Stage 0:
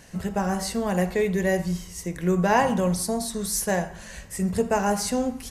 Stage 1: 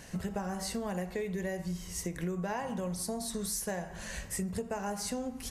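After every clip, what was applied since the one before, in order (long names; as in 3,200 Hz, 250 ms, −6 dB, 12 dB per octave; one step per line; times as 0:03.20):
downward compressor 12 to 1, threshold −32 dBFS, peak gain reduction 17 dB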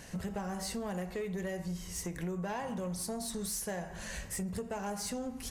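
soft clipping −30 dBFS, distortion −17 dB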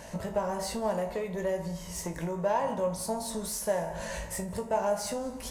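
tuned comb filter 55 Hz, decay 0.26 s, harmonics all, mix 80%
hollow resonant body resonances 610/910 Hz, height 14 dB, ringing for 30 ms
on a send at −19 dB: convolution reverb RT60 0.85 s, pre-delay 162 ms
on the sum: level +7 dB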